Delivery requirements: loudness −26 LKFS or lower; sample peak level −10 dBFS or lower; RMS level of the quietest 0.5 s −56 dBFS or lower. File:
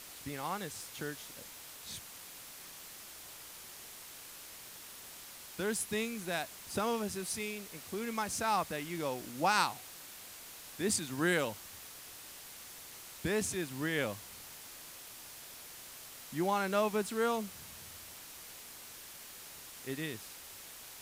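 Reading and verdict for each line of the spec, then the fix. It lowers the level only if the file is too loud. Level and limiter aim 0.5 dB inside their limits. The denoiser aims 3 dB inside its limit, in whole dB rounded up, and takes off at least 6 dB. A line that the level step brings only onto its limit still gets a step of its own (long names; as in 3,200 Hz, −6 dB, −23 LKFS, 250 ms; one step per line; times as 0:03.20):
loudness −38.0 LKFS: in spec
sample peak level −16.0 dBFS: in spec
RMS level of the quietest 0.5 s −50 dBFS: out of spec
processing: broadband denoise 9 dB, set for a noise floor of −50 dBFS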